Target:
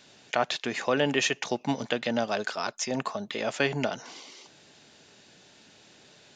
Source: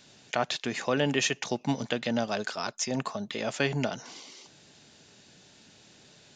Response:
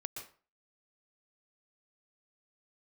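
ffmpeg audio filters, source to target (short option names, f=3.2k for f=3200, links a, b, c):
-af "bass=f=250:g=-6,treble=f=4k:g=-4,volume=2.5dB"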